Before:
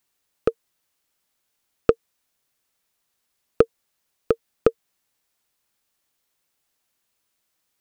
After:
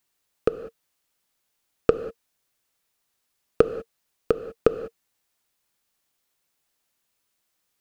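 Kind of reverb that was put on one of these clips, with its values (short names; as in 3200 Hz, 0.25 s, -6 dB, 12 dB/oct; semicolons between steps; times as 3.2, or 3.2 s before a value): non-linear reverb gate 0.22 s flat, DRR 10.5 dB; gain -1 dB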